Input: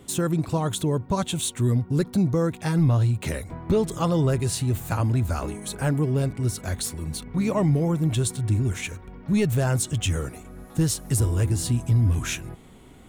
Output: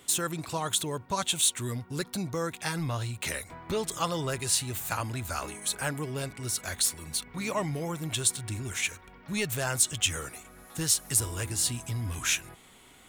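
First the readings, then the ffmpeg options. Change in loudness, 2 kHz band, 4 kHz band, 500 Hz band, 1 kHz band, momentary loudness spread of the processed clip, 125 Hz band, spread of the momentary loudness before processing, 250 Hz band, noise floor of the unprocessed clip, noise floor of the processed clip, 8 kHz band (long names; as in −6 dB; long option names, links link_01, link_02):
−5.0 dB, +1.5 dB, +3.5 dB, −8.0 dB, −2.0 dB, 10 LU, −13.0 dB, 9 LU, −12.0 dB, −47 dBFS, −55 dBFS, +4.0 dB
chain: -af "tiltshelf=frequency=680:gain=-9,volume=-5dB"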